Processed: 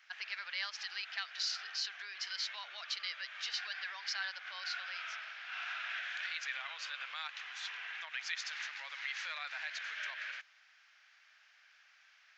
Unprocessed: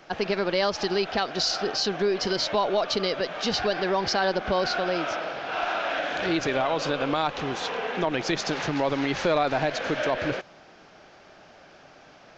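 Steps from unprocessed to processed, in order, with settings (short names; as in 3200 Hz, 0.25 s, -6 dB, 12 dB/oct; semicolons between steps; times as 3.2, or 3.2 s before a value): ladder high-pass 1500 Hz, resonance 40%; gain -3 dB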